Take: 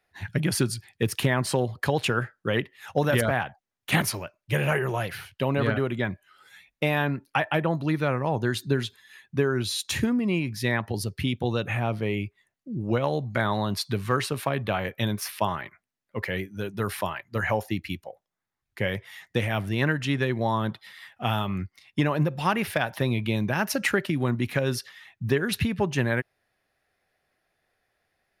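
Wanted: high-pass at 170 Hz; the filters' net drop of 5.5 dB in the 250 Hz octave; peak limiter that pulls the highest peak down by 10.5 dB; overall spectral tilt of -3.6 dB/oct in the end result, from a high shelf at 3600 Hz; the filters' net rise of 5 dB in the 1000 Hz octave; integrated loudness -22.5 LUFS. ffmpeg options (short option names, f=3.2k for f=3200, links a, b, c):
-af "highpass=170,equalizer=f=250:t=o:g=-6,equalizer=f=1k:t=o:g=6.5,highshelf=f=3.6k:g=4,volume=7dB,alimiter=limit=-9.5dB:level=0:latency=1"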